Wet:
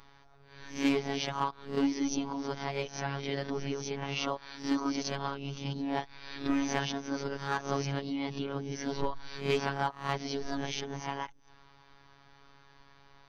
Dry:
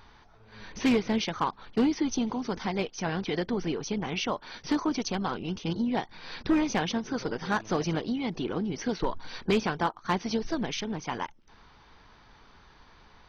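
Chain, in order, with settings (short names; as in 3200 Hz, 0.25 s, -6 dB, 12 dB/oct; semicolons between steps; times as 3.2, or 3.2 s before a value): spectral swells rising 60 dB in 0.37 s; robotiser 139 Hz; gain -2.5 dB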